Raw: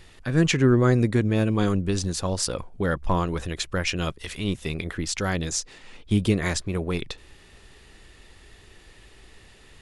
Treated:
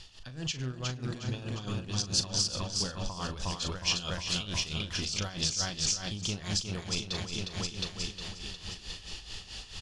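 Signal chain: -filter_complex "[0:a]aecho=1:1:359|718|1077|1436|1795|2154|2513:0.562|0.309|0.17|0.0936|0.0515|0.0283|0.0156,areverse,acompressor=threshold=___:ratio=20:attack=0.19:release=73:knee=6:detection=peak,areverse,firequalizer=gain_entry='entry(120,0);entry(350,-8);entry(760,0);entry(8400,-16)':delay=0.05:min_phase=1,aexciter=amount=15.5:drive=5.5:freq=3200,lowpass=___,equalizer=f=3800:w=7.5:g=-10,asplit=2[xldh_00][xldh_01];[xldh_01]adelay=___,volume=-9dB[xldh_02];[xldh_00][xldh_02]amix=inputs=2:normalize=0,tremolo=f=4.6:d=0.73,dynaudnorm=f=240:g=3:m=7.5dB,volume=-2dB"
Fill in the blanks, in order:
-31dB, 5000, 39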